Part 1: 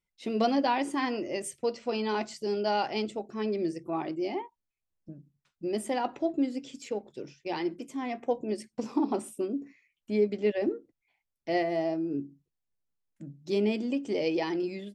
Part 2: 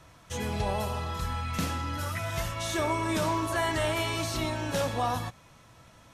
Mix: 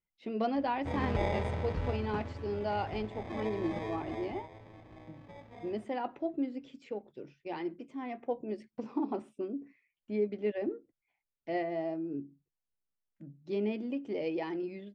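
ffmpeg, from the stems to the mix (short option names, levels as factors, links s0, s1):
-filter_complex "[0:a]volume=0.531[s0];[1:a]acrusher=samples=31:mix=1:aa=0.000001,adelay=550,volume=0.841,afade=t=out:st=1.91:d=0.25:silence=0.375837,afade=t=out:st=3.93:d=0.55:silence=0.251189[s1];[s0][s1]amix=inputs=2:normalize=0,lowpass=2700"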